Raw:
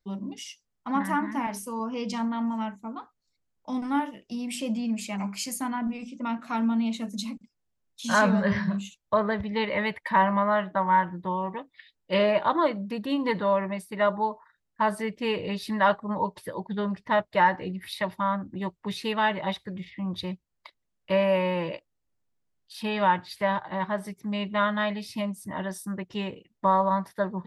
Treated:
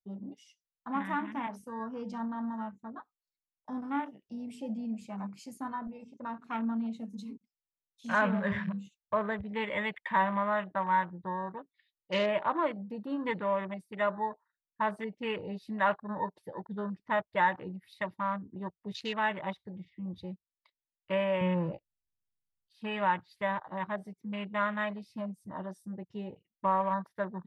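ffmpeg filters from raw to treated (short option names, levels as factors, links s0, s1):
-filter_complex "[0:a]asettb=1/sr,asplit=3[s0][s1][s2];[s0]atrim=end=5.674[s3];[s1]atrim=start=5.67:end=6.41,asetpts=PTS-STARTPTS,afade=t=in:d=0.004:c=qsin,afade=t=out:st=0.736:d=0.004:c=qsin,aecho=1:1:1.9:0.48,atrim=end_sample=32634[s4];[s2]atrim=start=6.406[s5];[s3][s4]acrossfade=d=0.004:c1=hsin:c2=qsin[s6];[s6][s5]acrossfade=d=0.004:c1=qsin:c2=hsin,asettb=1/sr,asplit=3[s7][s8][s9];[s7]atrim=end=21.414[s10];[s8]atrim=start=21.41:end=22.82,asetpts=PTS-STARTPTS,afade=t=in:d=0.004:c=qsin,afade=t=out:st=1.406:d=0.004:c=qsin,bass=f=250:g=13,treble=f=4000:g=-6[s11];[s9]atrim=start=22.816[s12];[s10][s11]acrossfade=d=0.004:c1=hsin:c2=qsin[s13];[s13][s12]acrossfade=d=0.004:c1=qsin:c2=hsin,afwtdn=0.0158,equalizer=f=3400:t=o:w=2.9:g=4.5,volume=0.422"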